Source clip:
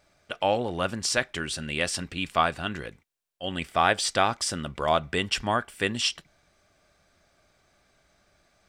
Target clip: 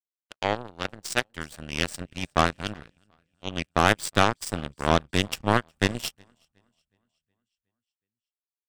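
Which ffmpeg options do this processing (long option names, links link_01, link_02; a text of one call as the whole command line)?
ffmpeg -i in.wav -filter_complex "[0:a]adynamicequalizer=threshold=0.00282:dfrequency=8100:dqfactor=3.8:tfrequency=8100:tqfactor=3.8:attack=5:release=100:ratio=0.375:range=4:mode=boostabove:tftype=bell,acrossover=split=230[link_01][link_02];[link_01]dynaudnorm=framelen=770:gausssize=3:maxgain=11dB[link_03];[link_03][link_02]amix=inputs=2:normalize=0,aeval=exprs='sgn(val(0))*max(abs(val(0))-0.00596,0)':channel_layout=same,aecho=1:1:367|734|1101|1468|1835|2202:0.178|0.103|0.0598|0.0347|0.0201|0.0117,aeval=exprs='0.562*(cos(1*acos(clip(val(0)/0.562,-1,1)))-cos(1*PI/2))+0.0178*(cos(3*acos(clip(val(0)/0.562,-1,1)))-cos(3*PI/2))+0.00891*(cos(6*acos(clip(val(0)/0.562,-1,1)))-cos(6*PI/2))+0.0708*(cos(7*acos(clip(val(0)/0.562,-1,1)))-cos(7*PI/2))':channel_layout=same,volume=2.5dB" out.wav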